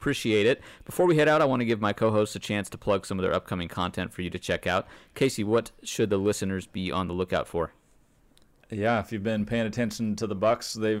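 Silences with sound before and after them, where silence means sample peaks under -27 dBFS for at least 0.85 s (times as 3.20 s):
7.65–8.72 s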